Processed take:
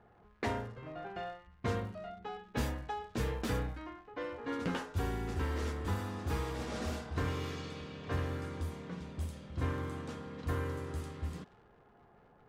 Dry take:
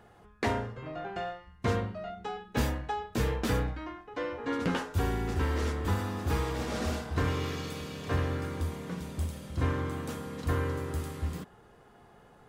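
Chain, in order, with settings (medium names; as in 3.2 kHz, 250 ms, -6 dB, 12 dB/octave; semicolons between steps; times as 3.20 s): crackle 240 per s -46 dBFS; level-controlled noise filter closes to 1.6 kHz, open at -27.5 dBFS; trim -5.5 dB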